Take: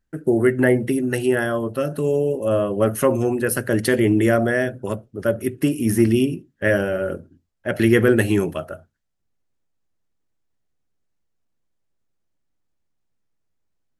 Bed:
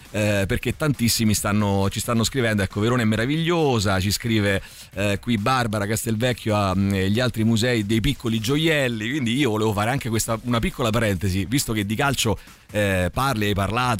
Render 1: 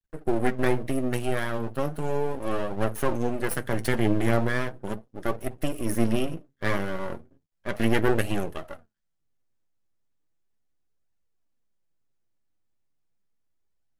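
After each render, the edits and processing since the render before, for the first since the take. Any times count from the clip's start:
half-wave rectification
flanger 0.36 Hz, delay 1 ms, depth 9 ms, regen +52%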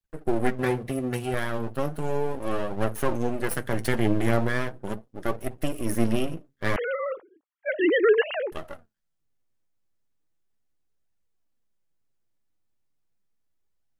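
0:00.58–0:01.34: notch comb filter 310 Hz
0:06.76–0:08.52: three sine waves on the formant tracks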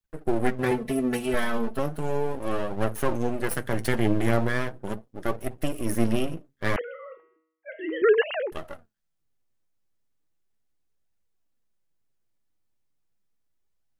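0:00.71–0:01.79: comb filter 4.6 ms, depth 96%
0:06.81–0:08.02: tuned comb filter 160 Hz, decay 0.74 s, mix 80%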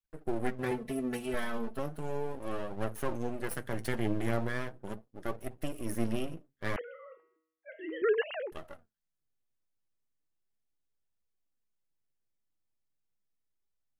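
level −8.5 dB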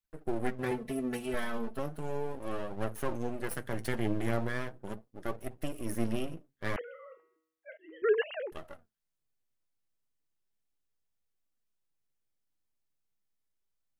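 0:07.77–0:08.37: multiband upward and downward expander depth 100%

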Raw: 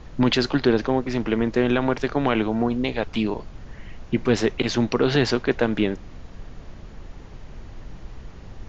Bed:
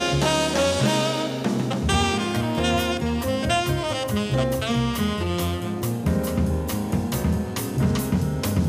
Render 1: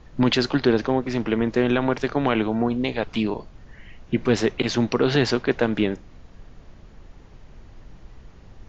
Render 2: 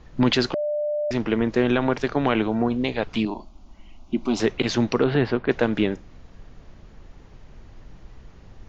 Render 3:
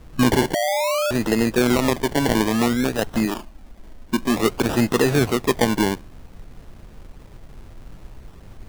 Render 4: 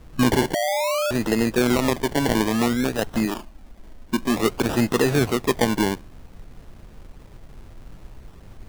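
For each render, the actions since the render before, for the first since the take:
noise reduction from a noise print 6 dB
0:00.54–0:01.11: beep over 595 Hz −22 dBFS; 0:03.25–0:04.40: phaser with its sweep stopped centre 470 Hz, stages 6; 0:05.04–0:05.49: high-frequency loss of the air 390 metres
in parallel at −5 dB: hard clipping −20.5 dBFS, distortion −7 dB; on the sum: sample-and-hold swept by an LFO 27×, swing 60% 0.56 Hz
level −1.5 dB

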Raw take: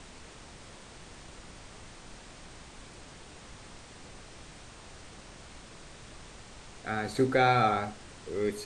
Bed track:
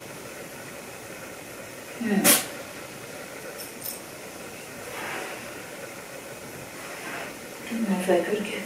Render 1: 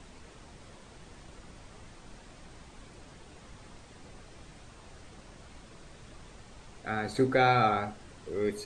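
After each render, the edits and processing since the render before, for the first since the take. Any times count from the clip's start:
broadband denoise 6 dB, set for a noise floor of −50 dBFS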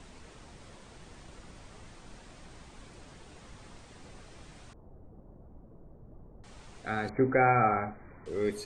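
0:04.73–0:06.44: Bessel low-pass filter 550 Hz, order 4
0:07.09–0:08.26: linear-phase brick-wall low-pass 2,400 Hz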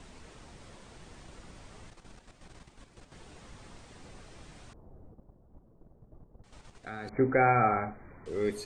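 0:01.90–0:03.12: output level in coarse steps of 10 dB
0:05.14–0:07.13: output level in coarse steps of 10 dB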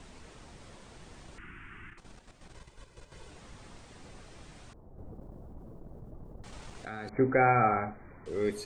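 0:01.38–0:01.98: drawn EQ curve 250 Hz 0 dB, 360 Hz +3 dB, 540 Hz −23 dB, 1,500 Hz +13 dB, 2,800 Hz +7 dB, 4,100 Hz −25 dB, 9,300 Hz −13 dB
0:02.55–0:03.30: comb filter 2 ms, depth 51%
0:04.98–0:06.88: envelope flattener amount 70%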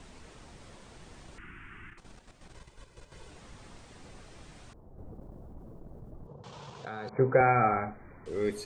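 0:06.27–0:07.41: loudspeaker in its box 110–6,700 Hz, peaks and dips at 140 Hz +10 dB, 280 Hz −9 dB, 480 Hz +7 dB, 980 Hz +9 dB, 2,000 Hz −7 dB, 3,300 Hz +4 dB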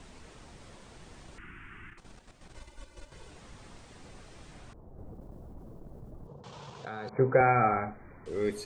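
0:02.56–0:03.10: comb filter 3.4 ms, depth 92%
0:04.53–0:06.41: multiband upward and downward compressor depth 40%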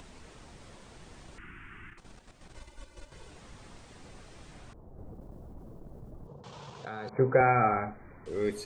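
upward compression, threshold −51 dBFS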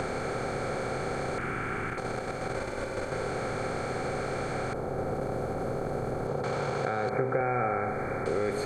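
compressor on every frequency bin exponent 0.4
downward compressor 5 to 1, threshold −25 dBFS, peak gain reduction 9.5 dB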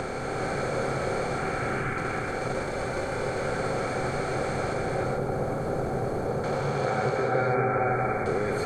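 reverb whose tail is shaped and stops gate 470 ms rising, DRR −1 dB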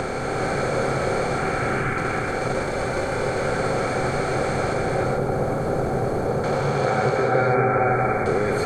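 level +5.5 dB

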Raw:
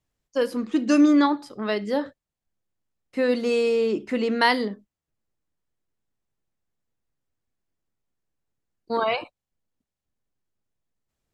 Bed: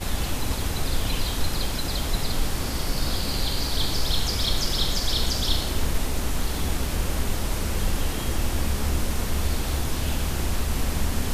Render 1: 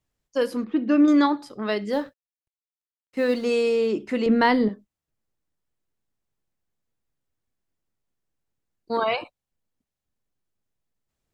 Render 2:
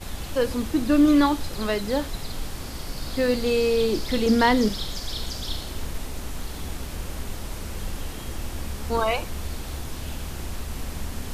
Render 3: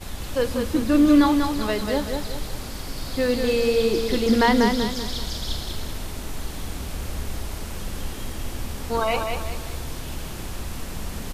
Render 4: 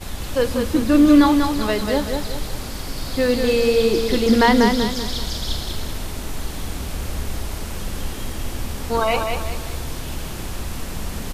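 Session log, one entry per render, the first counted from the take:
0:00.64–0:01.08: high-frequency loss of the air 380 metres; 0:01.92–0:03.44: mu-law and A-law mismatch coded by A; 0:04.26–0:04.69: RIAA equalisation playback
mix in bed −7 dB
repeating echo 192 ms, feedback 39%, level −5 dB
level +3.5 dB

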